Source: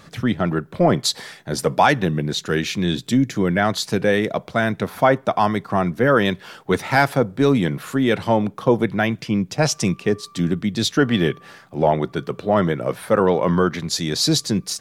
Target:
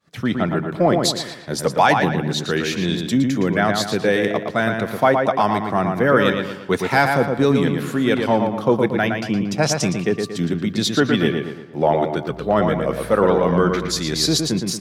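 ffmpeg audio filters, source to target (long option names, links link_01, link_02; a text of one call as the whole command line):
ffmpeg -i in.wav -filter_complex "[0:a]agate=range=-33dB:threshold=-35dB:ratio=3:detection=peak,lowshelf=frequency=71:gain=-11,asettb=1/sr,asplit=3[link_01][link_02][link_03];[link_01]atrim=end=12.294[link_04];[link_02]atrim=start=12.29:end=14.37,asetpts=PTS-STARTPTS,afade=type=in:duration=0.004:curve=qsin,afade=type=out:start_time=2.076:duration=0.004:curve=qsin,aeval=exprs='val(0)+0.00891*(sin(2*PI*60*n/s)+sin(2*PI*2*60*n/s)/2+sin(2*PI*3*60*n/s)/3+sin(2*PI*4*60*n/s)/4+sin(2*PI*5*60*n/s)/5)':channel_layout=same[link_05];[link_03]atrim=start=14.366[link_06];[link_04][link_05]acrossfade=duration=0.004:curve1=hsin:curve2=qsin[link_07];[link_07][link_06]acrossfade=duration=0.004:curve1=qsin:curve2=hsin,asplit=2[link_08][link_09];[link_09]adelay=115,lowpass=frequency=3700:poles=1,volume=-4.5dB,asplit=2[link_10][link_11];[link_11]adelay=115,lowpass=frequency=3700:poles=1,volume=0.45,asplit=2[link_12][link_13];[link_13]adelay=115,lowpass=frequency=3700:poles=1,volume=0.45,asplit=2[link_14][link_15];[link_15]adelay=115,lowpass=frequency=3700:poles=1,volume=0.45,asplit=2[link_16][link_17];[link_17]adelay=115,lowpass=frequency=3700:poles=1,volume=0.45,asplit=2[link_18][link_19];[link_19]adelay=115,lowpass=frequency=3700:poles=1,volume=0.45[link_20];[link_08][link_10][link_12][link_14][link_16][link_18][link_20]amix=inputs=7:normalize=0" out.wav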